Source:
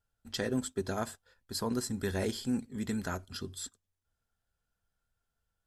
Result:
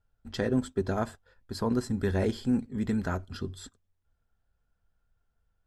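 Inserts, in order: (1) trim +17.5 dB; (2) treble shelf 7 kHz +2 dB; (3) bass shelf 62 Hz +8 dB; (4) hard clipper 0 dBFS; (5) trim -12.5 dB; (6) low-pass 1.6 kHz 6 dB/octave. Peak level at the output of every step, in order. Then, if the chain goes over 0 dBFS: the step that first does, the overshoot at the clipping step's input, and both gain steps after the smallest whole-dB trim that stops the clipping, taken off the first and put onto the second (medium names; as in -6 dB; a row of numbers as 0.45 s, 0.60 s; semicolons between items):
-2.5 dBFS, -2.0 dBFS, -2.5 dBFS, -2.5 dBFS, -15.0 dBFS, -15.5 dBFS; nothing clips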